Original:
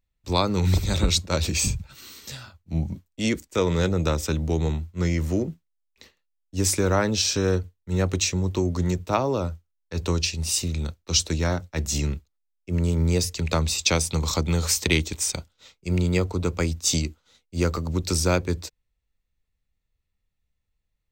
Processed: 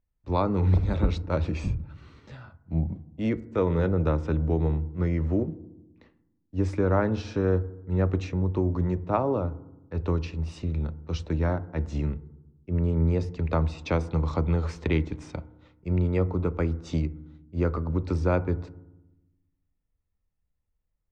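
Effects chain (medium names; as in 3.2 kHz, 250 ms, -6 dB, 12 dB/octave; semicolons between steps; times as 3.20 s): low-pass 1.4 kHz 12 dB/octave; FDN reverb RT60 0.96 s, low-frequency decay 1.5×, high-frequency decay 0.25×, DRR 15 dB; trim -1.5 dB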